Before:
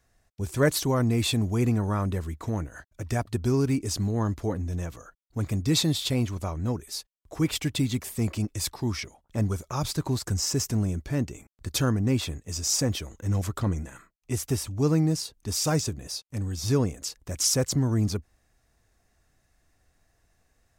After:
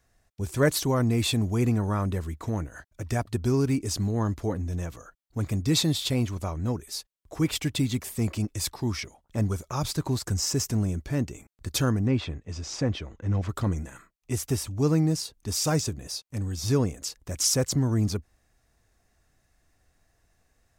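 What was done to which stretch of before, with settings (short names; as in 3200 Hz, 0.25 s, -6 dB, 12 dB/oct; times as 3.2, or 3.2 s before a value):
12.07–13.49 LPF 3200 Hz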